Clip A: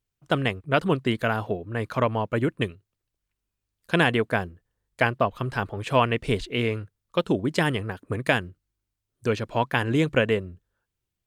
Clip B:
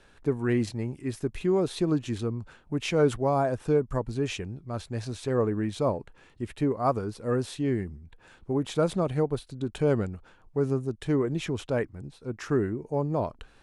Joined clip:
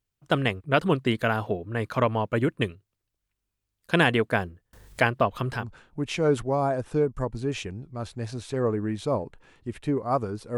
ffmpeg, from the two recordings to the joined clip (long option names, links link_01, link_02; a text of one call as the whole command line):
ffmpeg -i cue0.wav -i cue1.wav -filter_complex "[0:a]asettb=1/sr,asplit=3[link_01][link_02][link_03];[link_01]atrim=end=4.734[link_04];[link_02]atrim=start=4.73:end=5.68,asetpts=PTS-STARTPTS,afade=type=in:duration=0.004:curve=qsin,afade=type=out:start_time=0.946:duration=0.004:curve=qsin,acompressor=mode=upward:threshold=-27dB:ratio=2.5:attack=3.2:release=140:knee=2.83:detection=peak[link_05];[link_03]atrim=start=5.676[link_06];[link_04][link_05]acrossfade=duration=0.004:curve1=hsin:curve2=qsin[link_07];[link_07][link_06]acrossfade=duration=0.004:curve1=qsin:curve2=hsin,apad=whole_dur=10.57,atrim=end=10.57,atrim=end=5.68,asetpts=PTS-STARTPTS[link_08];[1:a]atrim=start=2.26:end=7.31,asetpts=PTS-STARTPTS[link_09];[link_08][link_09]acrossfade=duration=0.16:curve1=tri:curve2=tri" out.wav